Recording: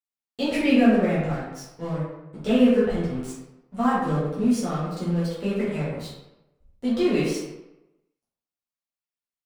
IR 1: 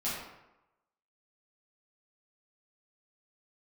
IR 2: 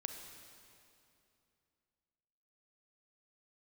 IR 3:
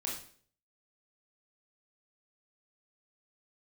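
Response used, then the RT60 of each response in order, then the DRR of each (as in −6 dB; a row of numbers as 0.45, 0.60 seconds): 1; 0.95, 2.7, 0.50 seconds; −10.5, 5.0, −3.5 decibels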